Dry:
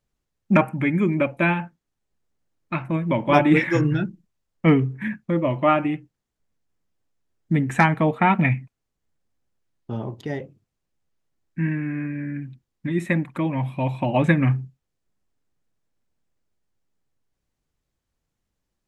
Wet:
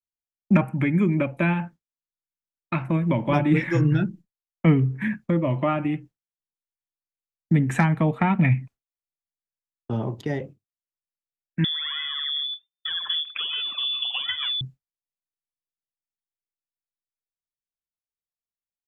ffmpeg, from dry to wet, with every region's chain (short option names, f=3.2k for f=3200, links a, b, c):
-filter_complex "[0:a]asettb=1/sr,asplit=3[a][b][c];[a]atrim=end=11.644[d];[b]atrim=start=11.64:end=14.61,asetpts=PTS-STARTPTS,afade=t=in:d=0.004:c=qsin,afade=t=out:st=2.966:d=0.004:c=qsin,aphaser=in_gain=1:out_gain=1:delay=1.9:decay=0.77:speed=1.3:type=sinusoidal,acompressor=threshold=-28dB:ratio=2.5:attack=3.2:release=140:knee=1:detection=peak,lowpass=f=3.1k:t=q:w=0.5098,lowpass=f=3.1k:t=q:w=0.6013,lowpass=f=3.1k:t=q:w=0.9,lowpass=f=3.1k:t=q:w=2.563,afreqshift=-3600[e];[c]atrim=start=14.606[f];[d][e]acrossfade=d=0.004:c1=hsin:c2=qsin[g];[g][f]acrossfade=d=0.004:c1=qsin:c2=hsin,agate=range=-33dB:threshold=-38dB:ratio=3:detection=peak,acrossover=split=200[h][i];[i]acompressor=threshold=-29dB:ratio=2.5[j];[h][j]amix=inputs=2:normalize=0,volume=3dB"